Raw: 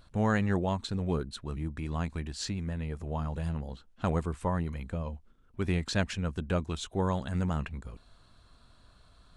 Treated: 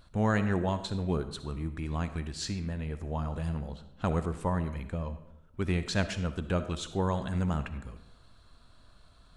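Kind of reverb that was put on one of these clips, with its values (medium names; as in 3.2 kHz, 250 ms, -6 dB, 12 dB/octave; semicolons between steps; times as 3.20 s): algorithmic reverb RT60 0.85 s, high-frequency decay 0.7×, pre-delay 20 ms, DRR 10.5 dB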